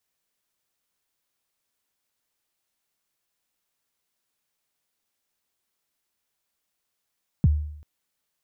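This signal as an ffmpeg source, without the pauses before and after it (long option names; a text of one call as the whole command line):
ffmpeg -f lavfi -i "aevalsrc='0.251*pow(10,-3*t/0.71)*sin(2*PI*(200*0.03/log(75/200)*(exp(log(75/200)*min(t,0.03)/0.03)-1)+75*max(t-0.03,0)))':duration=0.39:sample_rate=44100" out.wav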